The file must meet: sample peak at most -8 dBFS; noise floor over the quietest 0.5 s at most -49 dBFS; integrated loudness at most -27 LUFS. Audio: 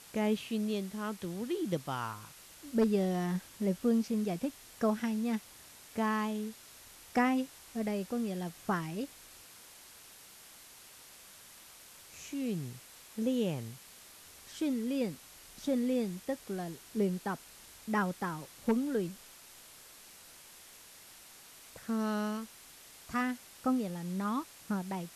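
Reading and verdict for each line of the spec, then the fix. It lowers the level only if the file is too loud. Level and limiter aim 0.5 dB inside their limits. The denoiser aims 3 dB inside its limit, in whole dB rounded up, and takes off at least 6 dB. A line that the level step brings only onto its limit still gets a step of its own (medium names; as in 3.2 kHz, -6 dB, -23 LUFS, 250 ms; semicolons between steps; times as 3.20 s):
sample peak -17.0 dBFS: pass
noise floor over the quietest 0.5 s -55 dBFS: pass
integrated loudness -34.5 LUFS: pass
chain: none needed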